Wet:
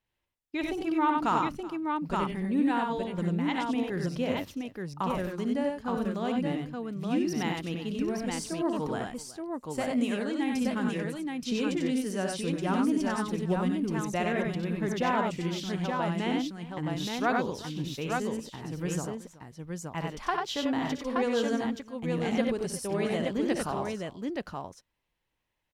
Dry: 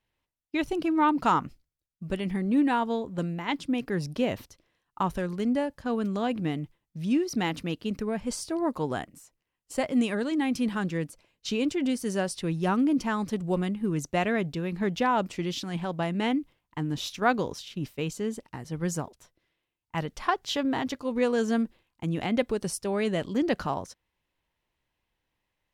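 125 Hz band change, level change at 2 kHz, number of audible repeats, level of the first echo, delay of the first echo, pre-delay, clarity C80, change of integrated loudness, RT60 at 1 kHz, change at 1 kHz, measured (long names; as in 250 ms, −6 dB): −1.0 dB, −1.5 dB, 4, −10.5 dB, 59 ms, no reverb audible, no reverb audible, −2.0 dB, no reverb audible, −1.0 dB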